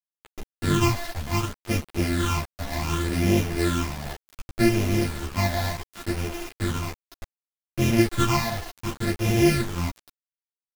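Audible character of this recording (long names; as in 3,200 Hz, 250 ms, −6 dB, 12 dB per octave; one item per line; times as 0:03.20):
a buzz of ramps at a fixed pitch in blocks of 128 samples
phaser sweep stages 8, 0.67 Hz, lowest notch 360–1,300 Hz
a quantiser's noise floor 6 bits, dither none
a shimmering, thickened sound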